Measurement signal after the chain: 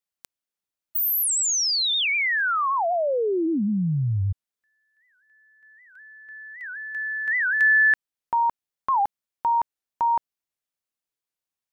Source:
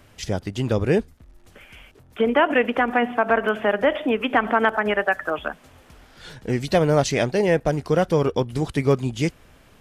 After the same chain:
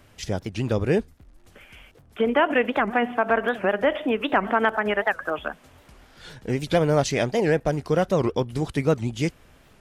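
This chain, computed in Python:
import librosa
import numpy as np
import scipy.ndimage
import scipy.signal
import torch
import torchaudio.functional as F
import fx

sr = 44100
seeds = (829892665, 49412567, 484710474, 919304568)

y = fx.record_warp(x, sr, rpm=78.0, depth_cents=250.0)
y = y * librosa.db_to_amplitude(-2.0)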